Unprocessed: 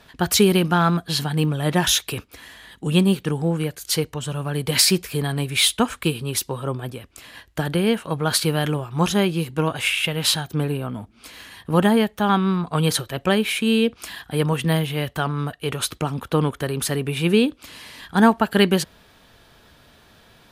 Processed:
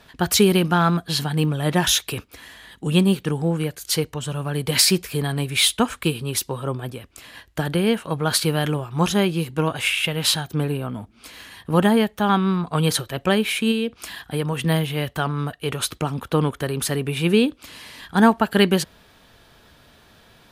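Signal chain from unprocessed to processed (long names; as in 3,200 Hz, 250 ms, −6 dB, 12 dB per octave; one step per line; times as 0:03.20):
0:13.71–0:14.57: downward compressor 5 to 1, threshold −20 dBFS, peak gain reduction 5.5 dB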